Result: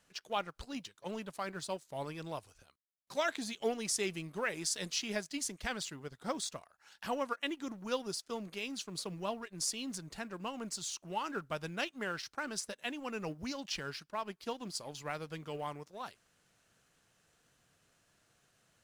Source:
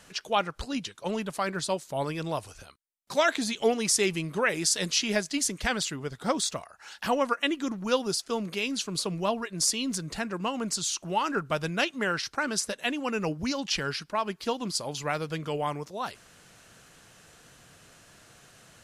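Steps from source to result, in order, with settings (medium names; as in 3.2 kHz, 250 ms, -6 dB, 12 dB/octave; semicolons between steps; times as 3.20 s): companding laws mixed up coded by A; trim -9 dB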